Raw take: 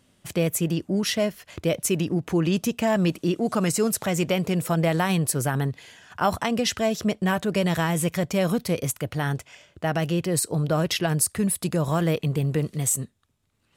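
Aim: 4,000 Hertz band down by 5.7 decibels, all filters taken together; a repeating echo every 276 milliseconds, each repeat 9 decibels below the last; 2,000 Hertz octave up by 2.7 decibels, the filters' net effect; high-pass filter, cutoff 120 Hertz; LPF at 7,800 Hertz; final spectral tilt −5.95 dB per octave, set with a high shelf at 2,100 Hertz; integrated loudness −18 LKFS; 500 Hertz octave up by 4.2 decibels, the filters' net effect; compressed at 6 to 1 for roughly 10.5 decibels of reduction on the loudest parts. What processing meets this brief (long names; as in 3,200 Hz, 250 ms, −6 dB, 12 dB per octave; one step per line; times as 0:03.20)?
high-pass filter 120 Hz
low-pass filter 7,800 Hz
parametric band 500 Hz +5.5 dB
parametric band 2,000 Hz +8 dB
high-shelf EQ 2,100 Hz −7 dB
parametric band 4,000 Hz −4.5 dB
downward compressor 6 to 1, threshold −27 dBFS
repeating echo 276 ms, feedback 35%, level −9 dB
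level +13.5 dB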